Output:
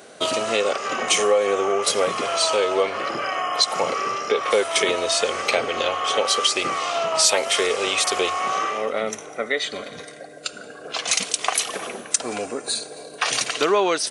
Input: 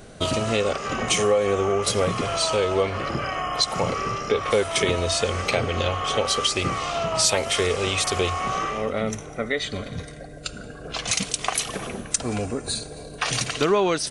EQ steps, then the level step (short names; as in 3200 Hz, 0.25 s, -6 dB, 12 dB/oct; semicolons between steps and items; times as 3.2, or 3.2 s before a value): HPF 380 Hz 12 dB/oct; +3.0 dB